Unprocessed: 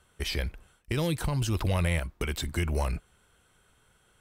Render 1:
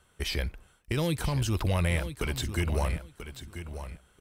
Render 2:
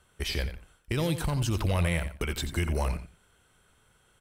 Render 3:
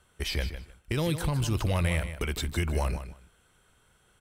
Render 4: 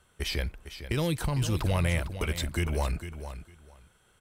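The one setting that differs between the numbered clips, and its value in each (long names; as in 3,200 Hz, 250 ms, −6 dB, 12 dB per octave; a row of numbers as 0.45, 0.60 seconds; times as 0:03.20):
repeating echo, delay time: 987, 88, 155, 454 milliseconds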